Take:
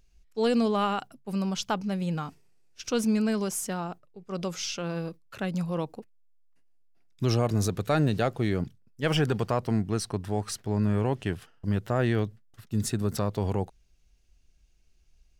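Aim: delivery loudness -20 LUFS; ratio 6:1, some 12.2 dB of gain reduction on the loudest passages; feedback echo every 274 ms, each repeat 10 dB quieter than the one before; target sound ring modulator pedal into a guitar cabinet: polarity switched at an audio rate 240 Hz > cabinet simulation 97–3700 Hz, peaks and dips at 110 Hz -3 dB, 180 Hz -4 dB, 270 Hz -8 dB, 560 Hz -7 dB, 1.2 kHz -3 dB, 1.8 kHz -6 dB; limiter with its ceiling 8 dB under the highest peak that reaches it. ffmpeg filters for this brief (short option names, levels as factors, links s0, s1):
-af "acompressor=threshold=0.02:ratio=6,alimiter=level_in=2.11:limit=0.0631:level=0:latency=1,volume=0.473,aecho=1:1:274|548|822|1096:0.316|0.101|0.0324|0.0104,aeval=exprs='val(0)*sgn(sin(2*PI*240*n/s))':c=same,highpass=97,equalizer=f=110:t=q:w=4:g=-3,equalizer=f=180:t=q:w=4:g=-4,equalizer=f=270:t=q:w=4:g=-8,equalizer=f=560:t=q:w=4:g=-7,equalizer=f=1200:t=q:w=4:g=-3,equalizer=f=1800:t=q:w=4:g=-6,lowpass=f=3700:w=0.5412,lowpass=f=3700:w=1.3066,volume=15.8"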